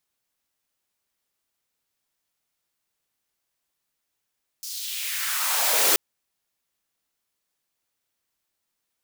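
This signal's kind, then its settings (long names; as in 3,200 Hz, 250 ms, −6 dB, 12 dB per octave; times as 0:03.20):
filter sweep on noise white, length 1.33 s highpass, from 5,500 Hz, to 370 Hz, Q 2.2, exponential, gain ramp +18 dB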